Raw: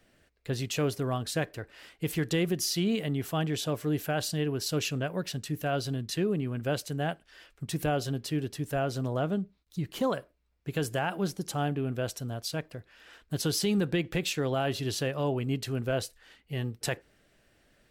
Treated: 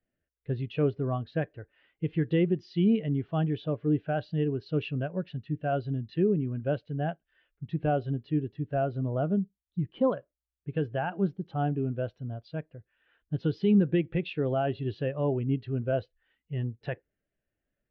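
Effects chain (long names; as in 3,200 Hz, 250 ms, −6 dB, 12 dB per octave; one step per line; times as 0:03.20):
inverse Chebyshev low-pass filter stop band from 12,000 Hz, stop band 70 dB
every bin expanded away from the loudest bin 1.5 to 1
level +3 dB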